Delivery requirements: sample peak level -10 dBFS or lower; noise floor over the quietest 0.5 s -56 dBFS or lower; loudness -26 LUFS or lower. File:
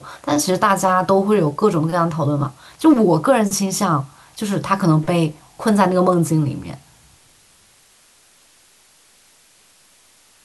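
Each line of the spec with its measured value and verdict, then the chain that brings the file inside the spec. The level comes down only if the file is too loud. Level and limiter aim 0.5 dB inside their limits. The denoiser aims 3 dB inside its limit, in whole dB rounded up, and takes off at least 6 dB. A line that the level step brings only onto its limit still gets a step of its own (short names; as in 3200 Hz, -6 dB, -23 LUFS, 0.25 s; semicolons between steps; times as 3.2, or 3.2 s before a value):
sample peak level -2.5 dBFS: fail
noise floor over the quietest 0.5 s -53 dBFS: fail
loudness -17.5 LUFS: fail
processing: gain -9 dB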